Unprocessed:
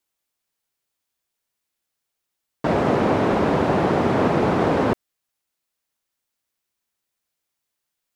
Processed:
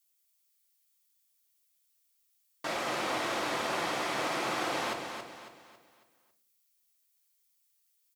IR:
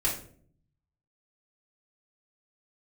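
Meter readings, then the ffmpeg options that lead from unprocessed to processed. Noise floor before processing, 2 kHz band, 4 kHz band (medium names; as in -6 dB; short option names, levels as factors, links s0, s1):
-81 dBFS, -5.0 dB, +1.0 dB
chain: -filter_complex "[0:a]aderivative,aecho=1:1:275|550|825|1100|1375:0.447|0.174|0.0679|0.0265|0.0103,asplit=2[s0][s1];[1:a]atrim=start_sample=2205,lowpass=6900,lowshelf=f=110:g=8.5[s2];[s1][s2]afir=irnorm=-1:irlink=0,volume=0.266[s3];[s0][s3]amix=inputs=2:normalize=0,volume=1.58"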